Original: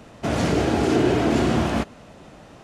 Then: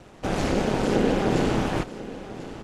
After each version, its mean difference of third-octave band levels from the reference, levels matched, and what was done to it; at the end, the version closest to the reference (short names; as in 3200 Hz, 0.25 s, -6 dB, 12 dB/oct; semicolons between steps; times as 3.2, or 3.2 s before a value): 3.5 dB: ring modulator 100 Hz; on a send: echo 1.042 s -15 dB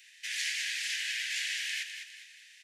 25.0 dB: steep high-pass 1700 Hz 96 dB/oct; feedback echo 0.204 s, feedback 41%, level -8 dB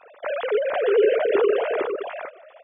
15.5 dB: sine-wave speech; on a send: echo 0.457 s -4 dB; on the sum: gain -2 dB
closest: first